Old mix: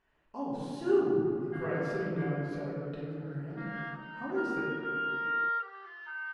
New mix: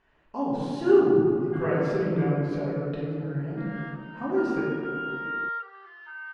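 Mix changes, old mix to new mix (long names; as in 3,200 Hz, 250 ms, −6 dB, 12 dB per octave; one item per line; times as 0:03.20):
speech +8.0 dB
master: add high-frequency loss of the air 54 metres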